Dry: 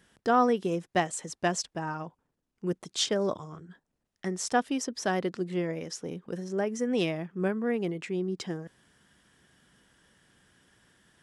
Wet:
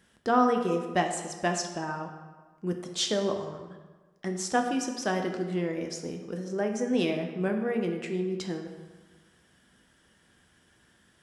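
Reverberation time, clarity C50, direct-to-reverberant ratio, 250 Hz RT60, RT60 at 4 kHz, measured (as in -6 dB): 1.3 s, 6.5 dB, 3.5 dB, 1.4 s, 0.95 s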